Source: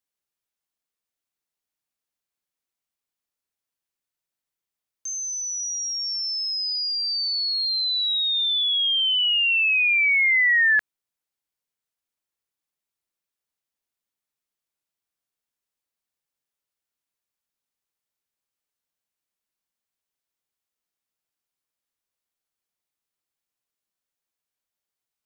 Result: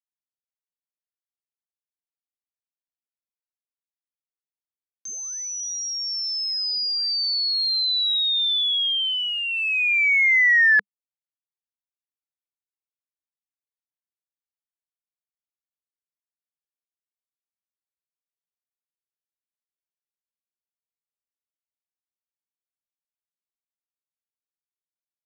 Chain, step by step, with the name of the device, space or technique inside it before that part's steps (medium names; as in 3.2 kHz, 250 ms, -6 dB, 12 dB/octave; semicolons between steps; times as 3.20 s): blown loudspeaker (crossover distortion -44 dBFS; cabinet simulation 150–5800 Hz, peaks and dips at 200 Hz +7 dB, 450 Hz +5 dB, 930 Hz -6 dB, 2.8 kHz -9 dB); trim +3.5 dB